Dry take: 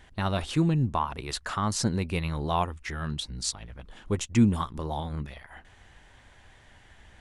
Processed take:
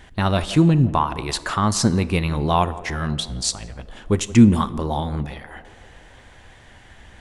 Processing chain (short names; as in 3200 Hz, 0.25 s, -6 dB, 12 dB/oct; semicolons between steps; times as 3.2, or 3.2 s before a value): bell 260 Hz +2 dB 1.5 oct; narrowing echo 0.172 s, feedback 74%, band-pass 520 Hz, level -15.5 dB; on a send at -17 dB: reverb RT60 1.0 s, pre-delay 21 ms; on the sum: gain +7.5 dB